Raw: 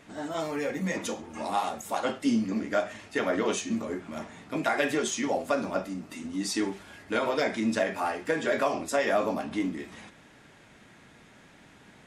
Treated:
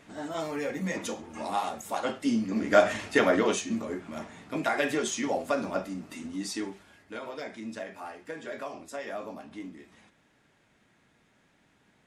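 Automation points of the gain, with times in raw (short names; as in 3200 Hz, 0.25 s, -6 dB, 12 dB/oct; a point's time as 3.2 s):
2.49 s -1.5 dB
2.88 s +10.5 dB
3.67 s -1 dB
6.21 s -1 dB
7.15 s -11.5 dB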